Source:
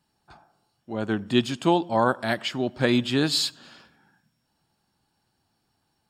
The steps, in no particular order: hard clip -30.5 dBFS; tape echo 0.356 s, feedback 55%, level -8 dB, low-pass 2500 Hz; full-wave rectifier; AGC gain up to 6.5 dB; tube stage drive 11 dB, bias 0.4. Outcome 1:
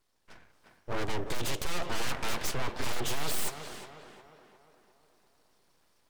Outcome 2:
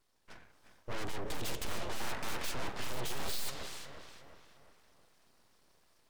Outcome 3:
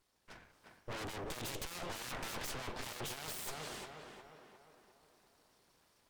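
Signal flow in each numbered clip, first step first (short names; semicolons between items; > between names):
tube stage > full-wave rectifier > tape echo > hard clip > AGC; tube stage > AGC > hard clip > tape echo > full-wave rectifier; full-wave rectifier > tape echo > AGC > hard clip > tube stage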